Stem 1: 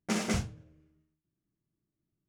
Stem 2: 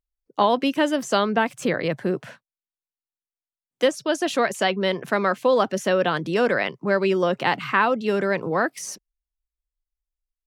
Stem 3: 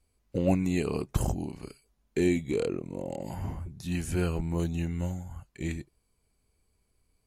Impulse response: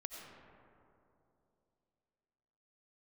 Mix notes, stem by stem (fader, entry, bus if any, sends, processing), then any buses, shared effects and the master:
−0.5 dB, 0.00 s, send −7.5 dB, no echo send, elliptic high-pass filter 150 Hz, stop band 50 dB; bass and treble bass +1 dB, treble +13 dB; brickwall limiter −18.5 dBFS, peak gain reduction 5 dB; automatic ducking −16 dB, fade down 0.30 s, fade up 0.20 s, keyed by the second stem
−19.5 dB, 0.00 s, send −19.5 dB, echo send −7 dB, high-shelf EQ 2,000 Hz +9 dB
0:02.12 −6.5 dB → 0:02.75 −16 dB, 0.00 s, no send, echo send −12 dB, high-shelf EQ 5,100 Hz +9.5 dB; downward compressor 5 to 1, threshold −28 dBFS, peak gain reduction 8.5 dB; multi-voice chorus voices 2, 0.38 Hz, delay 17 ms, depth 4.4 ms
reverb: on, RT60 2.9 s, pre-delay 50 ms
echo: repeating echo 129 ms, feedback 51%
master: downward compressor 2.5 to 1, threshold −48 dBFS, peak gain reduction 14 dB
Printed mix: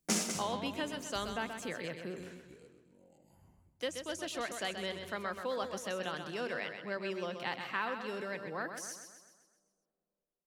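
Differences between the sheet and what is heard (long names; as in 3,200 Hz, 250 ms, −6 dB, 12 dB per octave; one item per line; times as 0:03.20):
stem 3 −6.5 dB → −15.5 dB
master: missing downward compressor 2.5 to 1, threshold −48 dBFS, peak gain reduction 14 dB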